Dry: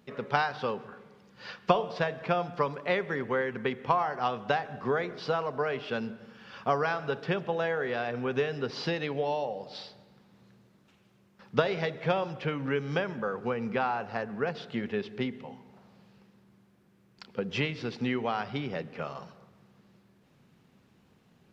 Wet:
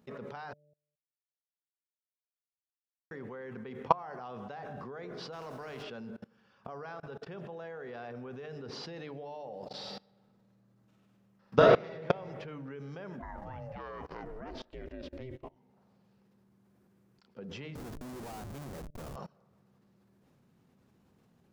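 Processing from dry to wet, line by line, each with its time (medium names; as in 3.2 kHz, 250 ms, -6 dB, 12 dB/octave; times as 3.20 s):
0.53–3.11 s: mute
5.32–5.82 s: spectral contrast reduction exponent 0.66
6.67–7.63 s: fade in, from -21.5 dB
9.79–12.06 s: reverb throw, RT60 1.3 s, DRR -4 dB
13.19–15.55 s: ring modulator 480 Hz -> 110 Hz
17.75–19.16 s: Schmitt trigger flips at -38 dBFS
whole clip: peaking EQ 2.8 kHz -6.5 dB 1.9 oct; de-hum 148.2 Hz, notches 4; level held to a coarse grid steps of 24 dB; trim +5 dB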